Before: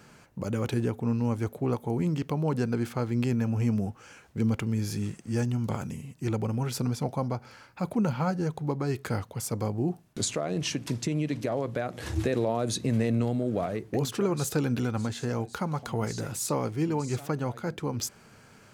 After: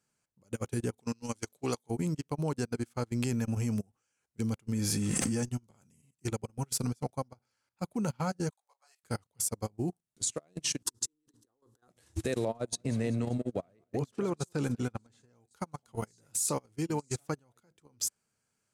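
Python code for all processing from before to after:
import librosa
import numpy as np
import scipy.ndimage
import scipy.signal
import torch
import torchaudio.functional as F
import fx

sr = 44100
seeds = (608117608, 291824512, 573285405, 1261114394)

y = fx.chain(x, sr, fx.highpass(hz=180.0, slope=6),
    fx.peak_eq(hz=4700.0, db=12.5, octaves=2.1), at=(0.97, 1.9))
y = fx.chain(y, sr, fx.high_shelf(hz=3800.0, db=-6.5),
    fx.comb(ms=3.9, depth=0.34),
    fx.env_flatten(amount_pct=100), at=(4.72, 5.43))
y = fx.chain(y, sr, fx.steep_highpass(hz=600.0, slope=48),
    fx.high_shelf(hz=4300.0, db=3.5),
    fx.detune_double(cents=24), at=(8.5, 9.04))
y = fx.chain(y, sr, fx.over_compress(threshold_db=-34.0, ratio=-0.5),
    fx.fixed_phaser(hz=620.0, stages=6), at=(10.82, 11.88))
y = fx.chain(y, sr, fx.lowpass(hz=2800.0, slope=6),
    fx.echo_feedback(ms=194, feedback_pct=51, wet_db=-17.0), at=(12.45, 15.36))
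y = fx.peak_eq(y, sr, hz=8900.0, db=14.5, octaves=1.5)
y = fx.level_steps(y, sr, step_db=14)
y = fx.upward_expand(y, sr, threshold_db=-43.0, expansion=2.5)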